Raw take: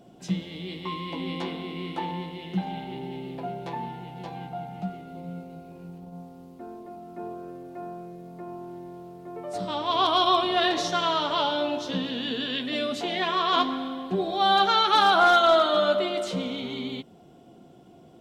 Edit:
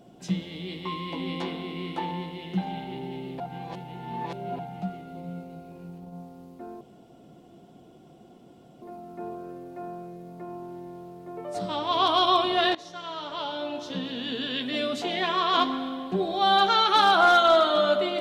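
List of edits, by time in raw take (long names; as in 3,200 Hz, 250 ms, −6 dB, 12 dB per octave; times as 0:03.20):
0:03.40–0:04.59: reverse
0:06.81: splice in room tone 2.01 s
0:10.74–0:12.69: fade in, from −19 dB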